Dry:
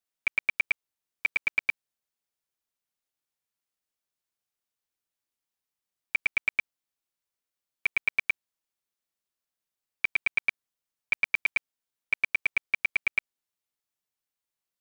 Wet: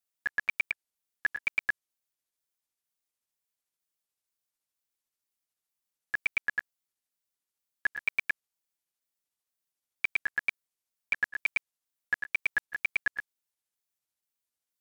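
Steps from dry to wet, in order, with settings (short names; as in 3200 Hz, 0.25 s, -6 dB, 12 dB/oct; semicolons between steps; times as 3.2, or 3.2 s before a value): trilling pitch shifter -5.5 st, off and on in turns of 0.237 s; high shelf 5400 Hz +7 dB; gain -3.5 dB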